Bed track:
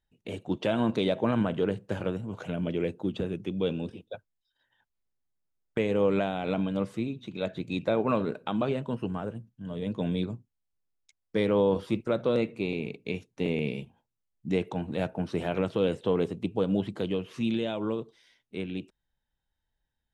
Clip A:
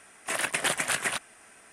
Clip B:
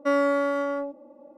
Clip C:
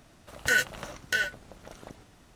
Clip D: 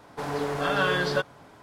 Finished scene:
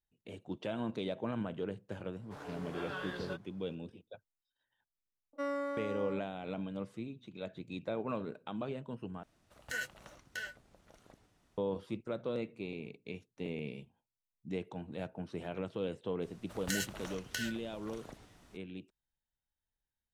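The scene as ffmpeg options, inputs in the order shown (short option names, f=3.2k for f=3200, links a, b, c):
-filter_complex "[3:a]asplit=2[a][b];[0:a]volume=-11dB[c];[4:a]flanger=delay=16.5:depth=6.5:speed=2.9[d];[b]acrossover=split=170|3000[e][f][g];[f]acompressor=threshold=-36dB:ratio=6:attack=3.2:release=140:knee=2.83:detection=peak[h];[e][h][g]amix=inputs=3:normalize=0[i];[c]asplit=2[j][k];[j]atrim=end=9.234[l];[a]atrim=end=2.35,asetpts=PTS-STARTPTS,volume=-14.5dB[m];[k]atrim=start=11.576[n];[d]atrim=end=1.62,asetpts=PTS-STARTPTS,volume=-14.5dB,afade=t=in:d=0.004:c=hsin,afade=t=out:st=1.616:d=0.004:c=hsin,adelay=2130[o];[2:a]atrim=end=1.37,asetpts=PTS-STARTPTS,volume=-14dB,afade=t=in:d=0.004:c=hsin,afade=t=out:st=1.366:d=0.004:c=hsin,adelay=235053S[p];[i]atrim=end=2.35,asetpts=PTS-STARTPTS,volume=-4.5dB,afade=t=in:d=0.004:c=hsin,afade=t=out:st=2.346:d=0.004:c=hsin,adelay=16220[q];[l][m]acrossfade=d=0.004:c1=hsin:c2=hsin[r];[r][n]acrossfade=d=0.004:c1=hsin:c2=hsin[s];[s][o][p][q]amix=inputs=4:normalize=0"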